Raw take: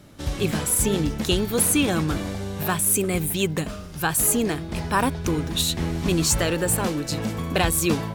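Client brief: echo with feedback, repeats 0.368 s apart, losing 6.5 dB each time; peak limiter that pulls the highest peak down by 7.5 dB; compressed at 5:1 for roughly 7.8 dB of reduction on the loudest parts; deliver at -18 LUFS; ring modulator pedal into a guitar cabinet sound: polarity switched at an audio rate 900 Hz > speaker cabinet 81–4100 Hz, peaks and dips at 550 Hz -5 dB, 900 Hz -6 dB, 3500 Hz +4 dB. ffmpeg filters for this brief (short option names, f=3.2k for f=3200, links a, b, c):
-af "acompressor=threshold=-25dB:ratio=5,alimiter=limit=-21dB:level=0:latency=1,aecho=1:1:368|736|1104|1472|1840|2208:0.473|0.222|0.105|0.0491|0.0231|0.0109,aeval=exprs='val(0)*sgn(sin(2*PI*900*n/s))':c=same,highpass=81,equalizer=f=550:t=q:w=4:g=-5,equalizer=f=900:t=q:w=4:g=-6,equalizer=f=3.5k:t=q:w=4:g=4,lowpass=f=4.1k:w=0.5412,lowpass=f=4.1k:w=1.3066,volume=13dB"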